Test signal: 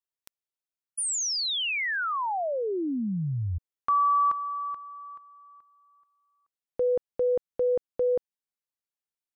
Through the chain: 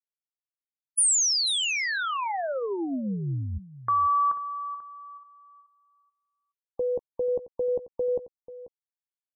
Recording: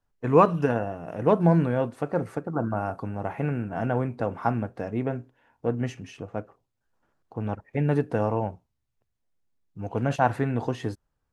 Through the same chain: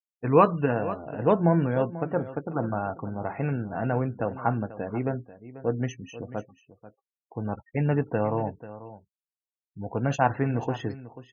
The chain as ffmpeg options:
ffmpeg -i in.wav -filter_complex "[0:a]afftfilt=real='re*gte(hypot(re,im),0.01)':imag='im*gte(hypot(re,im),0.01)':win_size=1024:overlap=0.75,highshelf=frequency=5800:gain=12,asplit=2[link_01][link_02];[link_02]adelay=15,volume=-13.5dB[link_03];[link_01][link_03]amix=inputs=2:normalize=0,aecho=1:1:489:0.168,volume=-1dB" out.wav

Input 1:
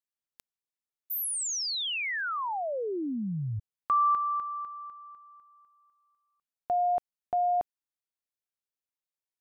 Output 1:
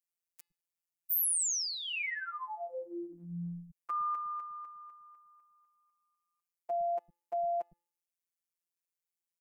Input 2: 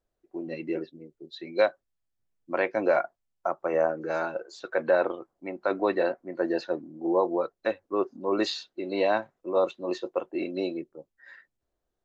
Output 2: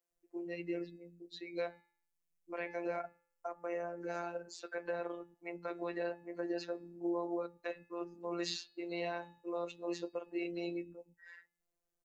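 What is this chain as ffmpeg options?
ffmpeg -i in.wav -filter_complex "[0:a]bandreject=frequency=290.5:width_type=h:width=4,bandreject=frequency=581:width_type=h:width=4,bandreject=frequency=871.5:width_type=h:width=4,bandreject=frequency=1162:width_type=h:width=4,bandreject=frequency=1452.5:width_type=h:width=4,bandreject=frequency=1743:width_type=h:width=4,bandreject=frequency=2033.5:width_type=h:width=4,bandreject=frequency=2324:width_type=h:width=4,bandreject=frequency=2614.5:width_type=h:width=4,bandreject=frequency=2905:width_type=h:width=4,bandreject=frequency=3195.5:width_type=h:width=4,bandreject=frequency=3486:width_type=h:width=4,bandreject=frequency=3776.5:width_type=h:width=4,bandreject=frequency=4067:width_type=h:width=4,bandreject=frequency=4357.5:width_type=h:width=4,bandreject=frequency=4648:width_type=h:width=4,bandreject=frequency=4938.5:width_type=h:width=4,bandreject=frequency=5229:width_type=h:width=4,alimiter=limit=-21.5dB:level=0:latency=1:release=87,aexciter=amount=1.7:drive=3.9:freq=2000,afftfilt=real='hypot(re,im)*cos(PI*b)':imag='0':win_size=1024:overlap=0.75,acrossover=split=220[link_01][link_02];[link_01]adelay=110[link_03];[link_03][link_02]amix=inputs=2:normalize=0,volume=-4.5dB" out.wav

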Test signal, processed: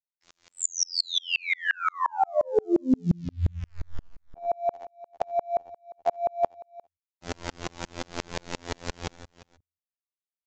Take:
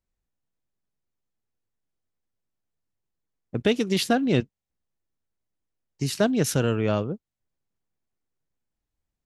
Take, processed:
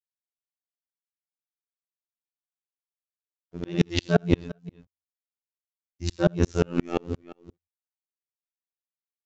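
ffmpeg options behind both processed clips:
ffmpeg -i in.wav -filter_complex "[0:a]anlmdn=0.251,equalizer=frequency=490:width_type=o:width=2.3:gain=5,bandreject=frequency=1300:width=19,asplit=2[link_01][link_02];[link_02]acontrast=82,volume=1dB[link_03];[link_01][link_03]amix=inputs=2:normalize=0,aeval=exprs='val(0)*gte(abs(val(0)),0.0422)':channel_layout=same,afreqshift=-71,asplit=2[link_04][link_05];[link_05]aecho=0:1:59|74|398:0.211|0.316|0.141[link_06];[link_04][link_06]amix=inputs=2:normalize=0,afftfilt=real='hypot(re,im)*cos(PI*b)':imag='0':win_size=2048:overlap=0.75,aresample=16000,aresample=44100,aeval=exprs='val(0)*pow(10,-38*if(lt(mod(-5.7*n/s,1),2*abs(-5.7)/1000),1-mod(-5.7*n/s,1)/(2*abs(-5.7)/1000),(mod(-5.7*n/s,1)-2*abs(-5.7)/1000)/(1-2*abs(-5.7)/1000))/20)':channel_layout=same,volume=-3.5dB" out.wav

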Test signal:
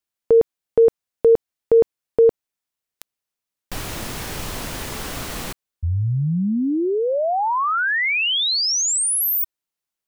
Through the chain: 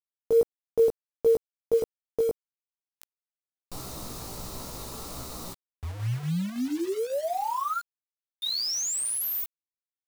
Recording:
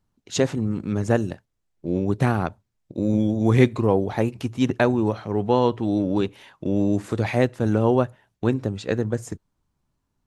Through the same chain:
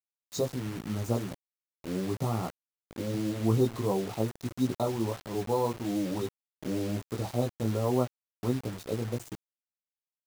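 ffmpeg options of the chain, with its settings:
ffmpeg -i in.wav -af "afftfilt=real='re*(1-between(b*sr/4096,1400,3600))':imag='im*(1-between(b*sr/4096,1400,3600))':win_size=4096:overlap=0.75,flanger=delay=15.5:depth=2.8:speed=1.5,acrusher=bits=5:mix=0:aa=0.000001,volume=-6dB" out.wav

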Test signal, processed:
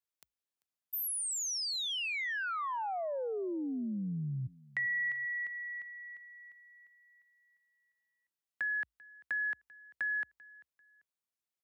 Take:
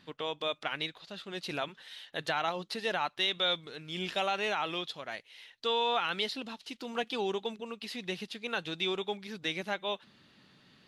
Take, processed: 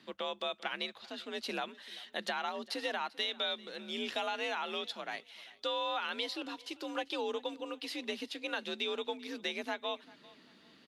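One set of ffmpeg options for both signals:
ffmpeg -i in.wav -filter_complex "[0:a]acompressor=threshold=-33dB:ratio=3,afreqshift=55,asplit=2[link_01][link_02];[link_02]aecho=0:1:392|784:0.0794|0.023[link_03];[link_01][link_03]amix=inputs=2:normalize=0" out.wav

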